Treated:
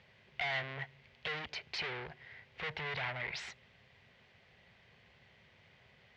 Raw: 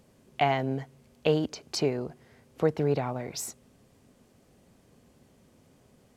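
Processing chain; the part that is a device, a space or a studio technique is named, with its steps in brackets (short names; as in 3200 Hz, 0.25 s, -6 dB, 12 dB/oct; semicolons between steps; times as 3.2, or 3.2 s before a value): scooped metal amplifier (tube stage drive 40 dB, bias 0.7; speaker cabinet 97–3500 Hz, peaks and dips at 370 Hz +5 dB, 1200 Hz -5 dB, 2000 Hz +7 dB; passive tone stack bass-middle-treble 10-0-10); gain +14.5 dB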